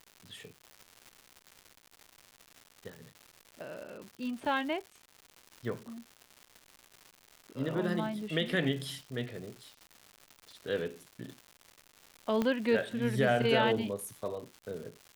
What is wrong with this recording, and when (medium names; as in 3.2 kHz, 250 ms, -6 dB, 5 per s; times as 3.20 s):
crackle -41 dBFS
12.42 s: pop -18 dBFS